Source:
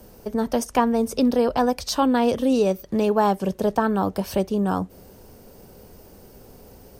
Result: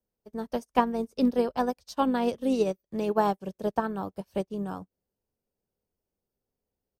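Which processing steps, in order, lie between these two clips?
pitch-shifted copies added −4 semitones −18 dB
expander for the loud parts 2.5 to 1, over −41 dBFS
level −1.5 dB

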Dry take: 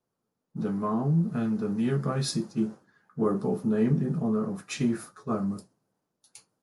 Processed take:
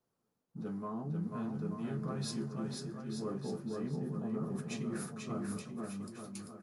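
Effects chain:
reversed playback
downward compressor 4 to 1, threshold −38 dBFS, peak gain reduction 15.5 dB
reversed playback
bouncing-ball delay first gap 490 ms, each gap 0.8×, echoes 5
level −1 dB

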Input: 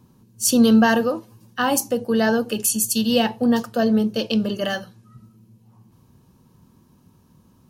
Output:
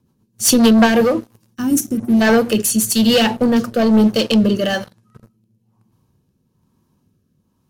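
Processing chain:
mains-hum notches 60/120/180/240/300 Hz
gain on a spectral selection 0:01.55–0:02.21, 400–5,300 Hz −20 dB
leveller curve on the samples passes 3
rotating-speaker cabinet horn 7.5 Hz, later 1.1 Hz, at 0:00.47

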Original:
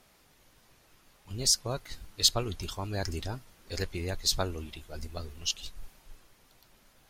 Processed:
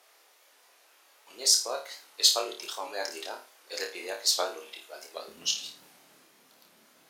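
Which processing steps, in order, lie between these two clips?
high-pass filter 450 Hz 24 dB per octave, from 0:05.28 190 Hz
flutter between parallel walls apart 4.7 metres, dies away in 0.35 s
wow of a warped record 78 rpm, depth 100 cents
level +1.5 dB

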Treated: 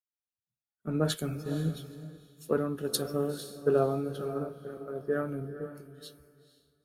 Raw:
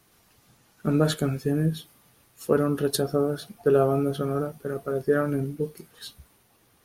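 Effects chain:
noise reduction from a noise print of the clip's start 14 dB
feedback delay with all-pass diffusion 478 ms, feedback 40%, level −8 dB
multiband upward and downward expander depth 70%
level −8.5 dB

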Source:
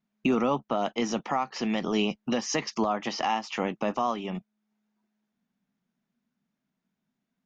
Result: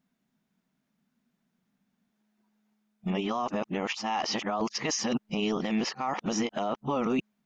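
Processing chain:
played backwards from end to start
brickwall limiter −24.5 dBFS, peak gain reduction 9 dB
level +4.5 dB

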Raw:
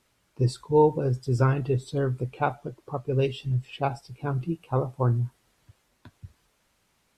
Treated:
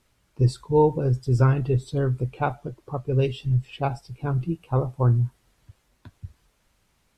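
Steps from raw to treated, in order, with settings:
low-shelf EQ 100 Hz +11 dB

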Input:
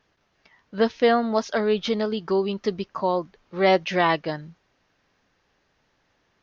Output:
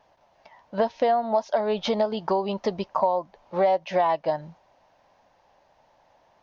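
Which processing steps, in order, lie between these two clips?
flat-topped bell 740 Hz +14 dB 1.1 octaves
downward compressor 6 to 1, threshold −20 dBFS, peak gain reduction 16 dB

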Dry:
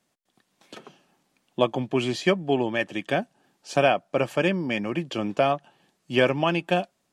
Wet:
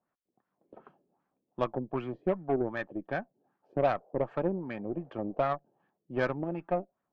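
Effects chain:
auto-filter low-pass sine 2.6 Hz 380–1,500 Hz
0:03.82–0:05.44: noise in a band 400–770 Hz −51 dBFS
harmonic generator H 3 −21 dB, 8 −27 dB, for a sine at −2.5 dBFS
level −8.5 dB

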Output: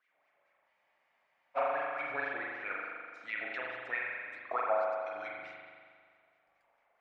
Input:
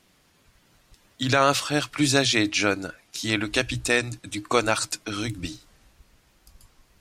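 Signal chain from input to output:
treble cut that deepens with the level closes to 2,100 Hz, closed at −19.5 dBFS
parametric band 520 Hz +7 dB 0.99 octaves
LFO wah 4.6 Hz 640–2,300 Hz, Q 9.1
spring reverb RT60 1.9 s, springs 40 ms, chirp 70 ms, DRR −3.5 dB
frozen spectrum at 0:00.69, 0.88 s
level −3.5 dB

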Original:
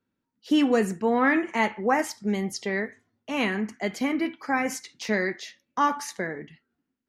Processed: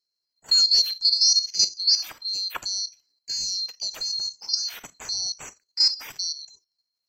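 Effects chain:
neighbouring bands swapped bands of 4,000 Hz
output level in coarse steps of 11 dB
level +5 dB

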